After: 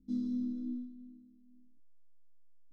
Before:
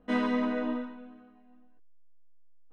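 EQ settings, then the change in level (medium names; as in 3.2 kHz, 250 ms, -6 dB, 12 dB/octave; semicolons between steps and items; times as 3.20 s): inverse Chebyshev band-stop 540–2900 Hz, stop band 40 dB; low-pass 4.4 kHz 12 dB/octave; dynamic bell 330 Hz, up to -4 dB, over -45 dBFS, Q 1.4; -2.5 dB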